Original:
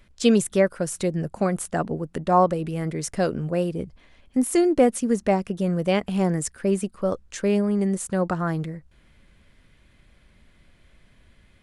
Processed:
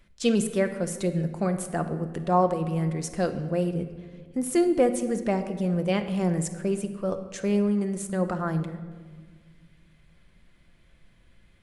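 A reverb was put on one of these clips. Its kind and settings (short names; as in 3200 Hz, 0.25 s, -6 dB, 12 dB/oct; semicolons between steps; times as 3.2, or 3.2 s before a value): shoebox room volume 1900 m³, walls mixed, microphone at 0.8 m; gain -4.5 dB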